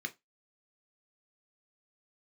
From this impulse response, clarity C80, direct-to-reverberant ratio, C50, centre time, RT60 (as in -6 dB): 31.5 dB, 5.5 dB, 22.0 dB, 5 ms, 0.20 s